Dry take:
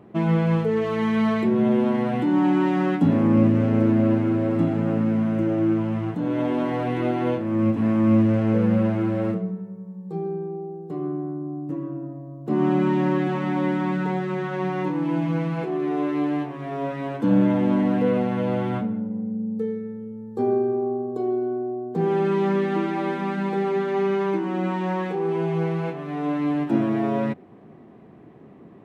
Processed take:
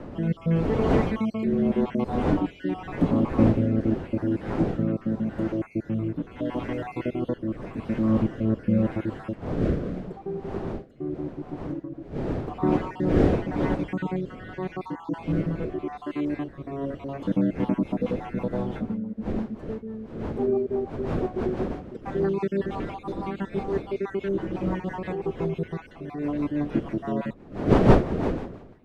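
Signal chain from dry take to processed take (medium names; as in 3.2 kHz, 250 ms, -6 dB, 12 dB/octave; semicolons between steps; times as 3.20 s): random holes in the spectrogram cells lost 50%; wind noise 440 Hz -28 dBFS; rotary cabinet horn 0.85 Hz, later 6 Hz, at 17.13 s; trim -1 dB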